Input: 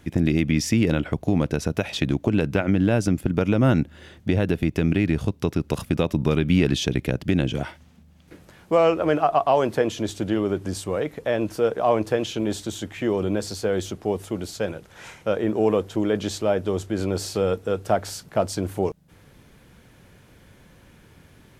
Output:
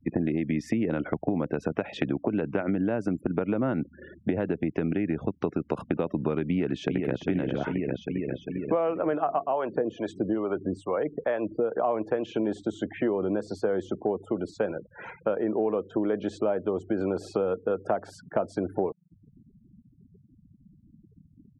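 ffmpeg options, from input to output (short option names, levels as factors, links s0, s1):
-filter_complex "[0:a]asplit=2[s0][s1];[s1]afade=t=in:st=6.47:d=0.01,afade=t=out:st=7.18:d=0.01,aecho=0:1:400|800|1200|1600|2000|2400|2800|3200|3600|4000|4400:0.473151|0.331206|0.231844|0.162291|0.113604|0.0795225|0.0556658|0.038966|0.0272762|0.0190934|0.0133654[s2];[s0][s2]amix=inputs=2:normalize=0,asettb=1/sr,asplit=3[s3][s4][s5];[s3]atrim=end=9.404[s6];[s4]atrim=start=9.4:end=11.74,asetpts=PTS-STARTPTS,afade=t=in:d=0.004:c=qsin,afade=t=out:st=2.336:d=0.004:c=qsin,acrossover=split=550[s7][s8];[s7]aeval=exprs='val(0)*(1-0.7/2+0.7/2*cos(2*PI*2.3*n/s))':c=same[s9];[s8]aeval=exprs='val(0)*(1-0.7/2-0.7/2*cos(2*PI*2.3*n/s))':c=same[s10];[s9][s10]amix=inputs=2:normalize=0[s11];[s5]atrim=start=11.736[s12];[s6][s11]acrossfade=d=0.004:c1=hsin:c2=qsin[s13];[s13][s12]acrossfade=d=0.004:c1=qsin:c2=hsin,asettb=1/sr,asplit=3[s14][s15][s16];[s14]atrim=end=12.604[s17];[s15]atrim=start=12.6:end=14.38,asetpts=PTS-STARTPTS,afade=t=in:d=0.004:c=qsin,afade=t=out:st=1.776:d=0.004:c=qsin,equalizer=f=2300:t=o:w=0.33:g=-2.5[s18];[s16]atrim=start=14.376[s19];[s17][s18]acrossfade=d=0.004:c1=hsin:c2=qsin[s20];[s20][s19]acrossfade=d=0.004:c1=qsin:c2=hsin,afftfilt=real='re*gte(hypot(re,im),0.0126)':imag='im*gte(hypot(re,im),0.0126)':win_size=1024:overlap=0.75,acrossover=split=180 2000:gain=0.2 1 0.1[s21][s22][s23];[s21][s22][s23]amix=inputs=3:normalize=0,acompressor=threshold=0.0355:ratio=6,volume=1.88"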